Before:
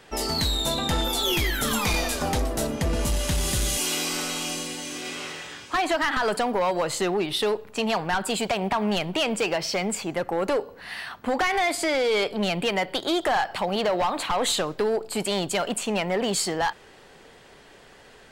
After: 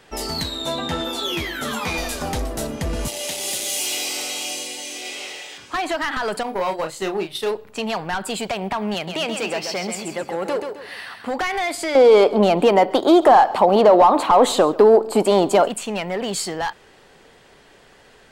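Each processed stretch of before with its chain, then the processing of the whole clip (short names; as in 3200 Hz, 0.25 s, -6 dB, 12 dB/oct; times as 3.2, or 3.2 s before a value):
0.43–1.98 HPF 160 Hz 6 dB/oct + high shelf 5900 Hz -11.5 dB + doubler 12 ms -4 dB
3.08–5.58 HPF 470 Hz + band shelf 1300 Hz -10 dB 1 oct + sample leveller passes 1
6.43–7.51 high shelf 9500 Hz +5.5 dB + gate -26 dBFS, range -9 dB + doubler 31 ms -6 dB
8.94–11.31 HPF 130 Hz 6 dB/oct + feedback echo 0.132 s, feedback 33%, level -6.5 dB
11.95–15.68 band shelf 510 Hz +12.5 dB 2.8 oct + echo 0.138 s -21 dB
whole clip: dry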